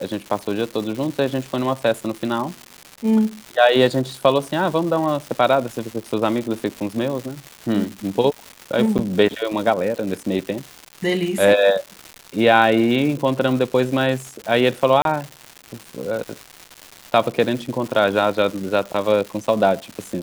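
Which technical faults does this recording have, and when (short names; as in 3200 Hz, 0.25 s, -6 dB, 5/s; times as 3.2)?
crackle 370/s -27 dBFS
8.98–8.99 gap 9 ms
15.02–15.05 gap 32 ms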